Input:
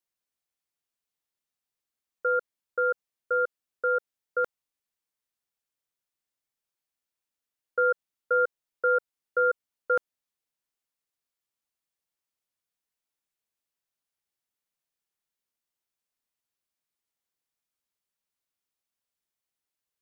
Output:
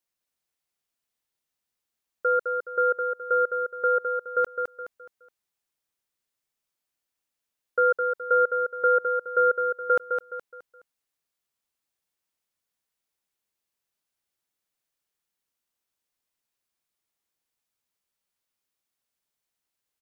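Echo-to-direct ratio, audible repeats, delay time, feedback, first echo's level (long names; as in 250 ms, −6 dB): −5.0 dB, 4, 210 ms, 36%, −5.5 dB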